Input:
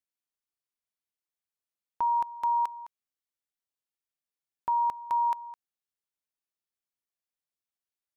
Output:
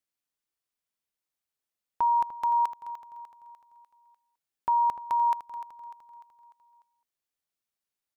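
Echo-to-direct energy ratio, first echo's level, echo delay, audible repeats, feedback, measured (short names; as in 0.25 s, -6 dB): -12.0 dB, -13.0 dB, 0.298 s, 4, 49%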